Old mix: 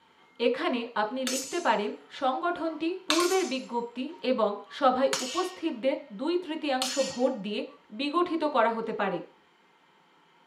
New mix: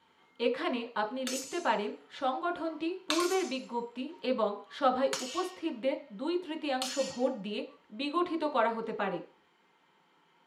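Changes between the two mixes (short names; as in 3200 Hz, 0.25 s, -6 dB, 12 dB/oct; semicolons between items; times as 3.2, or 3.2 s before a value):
speech -4.0 dB; background -5.5 dB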